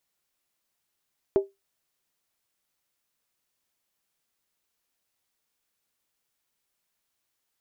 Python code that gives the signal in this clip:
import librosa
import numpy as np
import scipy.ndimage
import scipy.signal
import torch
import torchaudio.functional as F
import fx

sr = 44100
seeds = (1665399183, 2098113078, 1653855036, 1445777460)

y = fx.strike_skin(sr, length_s=0.63, level_db=-13.5, hz=393.0, decay_s=0.19, tilt_db=11.5, modes=5)